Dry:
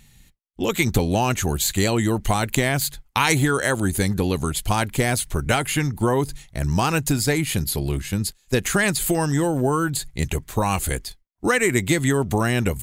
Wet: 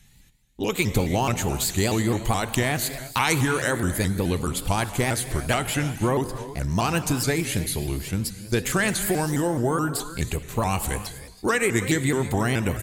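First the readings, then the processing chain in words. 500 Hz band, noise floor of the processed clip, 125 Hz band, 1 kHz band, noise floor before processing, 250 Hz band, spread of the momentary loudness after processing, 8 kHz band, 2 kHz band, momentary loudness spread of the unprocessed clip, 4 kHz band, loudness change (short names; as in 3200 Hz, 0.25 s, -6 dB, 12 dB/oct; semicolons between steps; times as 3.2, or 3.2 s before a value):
-2.5 dB, -50 dBFS, -2.5 dB, -2.5 dB, -59 dBFS, -2.5 dB, 6 LU, -2.5 dB, -2.5 dB, 6 LU, -2.5 dB, -2.5 dB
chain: echo 0.32 s -18 dB; non-linear reverb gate 0.36 s flat, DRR 10.5 dB; shaped vibrato saw up 4.7 Hz, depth 160 cents; gain -3 dB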